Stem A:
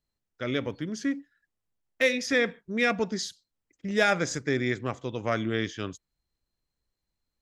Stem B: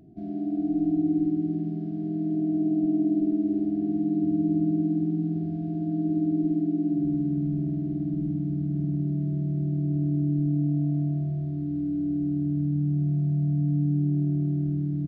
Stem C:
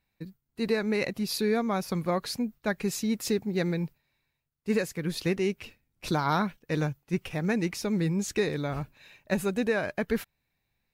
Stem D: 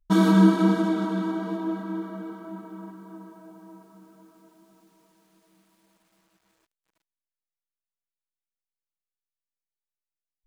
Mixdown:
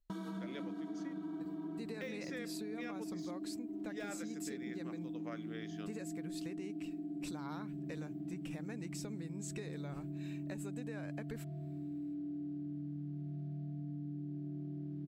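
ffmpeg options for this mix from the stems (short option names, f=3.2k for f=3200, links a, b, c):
-filter_complex "[0:a]highpass=230,deesser=0.8,volume=-11.5dB[a];[1:a]highpass=f=380:p=1,alimiter=level_in=0.5dB:limit=-24dB:level=0:latency=1,volume=-0.5dB,adelay=200,volume=-4.5dB[b];[2:a]equalizer=f=7.8k:t=o:w=0.21:g=15,adelay=1200,volume=1dB[c];[3:a]volume=-9dB[d];[c][d]amix=inputs=2:normalize=0,acompressor=threshold=-42dB:ratio=2.5,volume=0dB[e];[a][b][e]amix=inputs=3:normalize=0,acompressor=threshold=-40dB:ratio=6"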